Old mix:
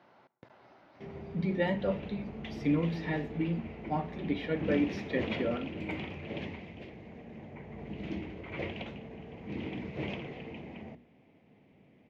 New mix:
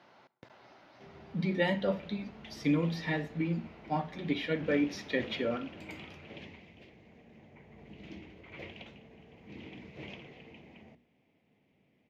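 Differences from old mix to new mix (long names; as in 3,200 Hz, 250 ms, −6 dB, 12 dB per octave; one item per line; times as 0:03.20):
background −10.0 dB
master: add high-shelf EQ 2,900 Hz +11 dB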